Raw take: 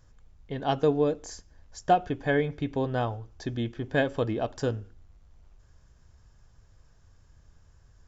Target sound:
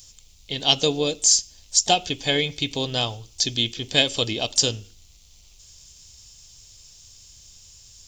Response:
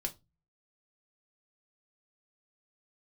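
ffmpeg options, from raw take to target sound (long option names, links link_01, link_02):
-filter_complex "[0:a]aexciter=amount=14.1:drive=6.5:freq=2500,asplit=2[link_01][link_02];[link_02]asetrate=52444,aresample=44100,atempo=0.840896,volume=-18dB[link_03];[link_01][link_03]amix=inputs=2:normalize=0"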